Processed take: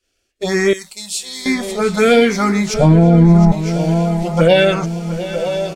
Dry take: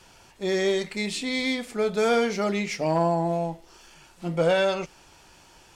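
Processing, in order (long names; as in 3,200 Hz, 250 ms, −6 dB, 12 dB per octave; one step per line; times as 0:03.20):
single-tap delay 962 ms −13 dB
phaser swept by the level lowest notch 150 Hz, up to 2,300 Hz, full sweep at −15 dBFS
0:02.74–0:03.52: spectral tilt −4.5 dB per octave
on a send: feedback echo with a long and a short gap by turns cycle 948 ms, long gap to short 3 to 1, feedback 49%, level −15 dB
on the sum: downward expander −39 dBFS
0:00.73–0:01.46: first-order pre-emphasis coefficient 0.9
boost into a limiter +15 dB
level −1 dB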